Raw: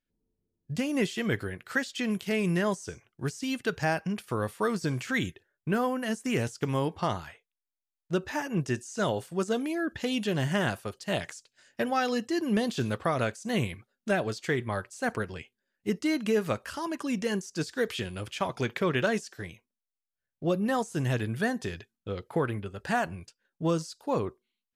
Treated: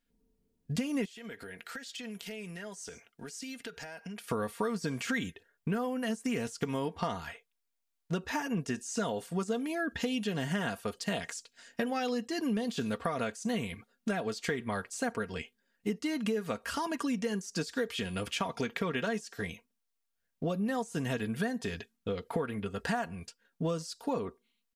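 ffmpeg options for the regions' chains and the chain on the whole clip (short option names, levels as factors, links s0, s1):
-filter_complex "[0:a]asettb=1/sr,asplit=3[s0][s1][s2];[s0]atrim=end=1.054[s3];[s1]atrim=start=1.05:end=4.3,asetpts=PTS-STARTPTS,afade=t=in:d=0.004:c=qsin,afade=t=out:st=3.246:d=0.004:c=qsin,lowshelf=f=290:g=-11,bandreject=f=1100:w=6.4,acompressor=threshold=0.00562:ratio=10:attack=3.2:release=140:knee=1:detection=peak[s4];[s2]atrim=start=4.296[s5];[s3][s4]acrossfade=d=0.004:c1=hsin:c2=qsin[s6];[s6][s5]acrossfade=d=0.004:c1=qsin:c2=hsin,aecho=1:1:4.3:0.56,acompressor=threshold=0.0178:ratio=5,volume=1.68"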